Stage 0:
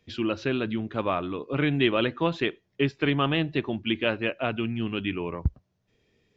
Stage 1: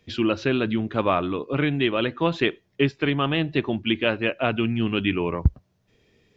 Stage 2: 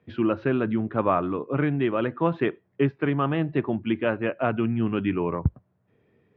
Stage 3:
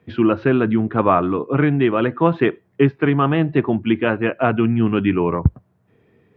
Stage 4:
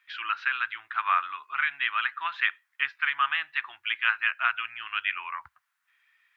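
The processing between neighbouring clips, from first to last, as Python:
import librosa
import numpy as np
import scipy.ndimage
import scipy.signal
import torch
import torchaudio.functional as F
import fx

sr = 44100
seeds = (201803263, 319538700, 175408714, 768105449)

y1 = fx.rider(x, sr, range_db=10, speed_s=0.5)
y1 = y1 * librosa.db_to_amplitude(3.5)
y2 = scipy.signal.sosfilt(scipy.signal.cheby1(2, 1.0, [110.0, 1400.0], 'bandpass', fs=sr, output='sos'), y1)
y3 = fx.notch(y2, sr, hz=570.0, q=12.0)
y3 = y3 * librosa.db_to_amplitude(7.5)
y4 = scipy.signal.sosfilt(scipy.signal.cheby2(4, 50, 540.0, 'highpass', fs=sr, output='sos'), y3)
y4 = y4 * librosa.db_to_amplitude(2.5)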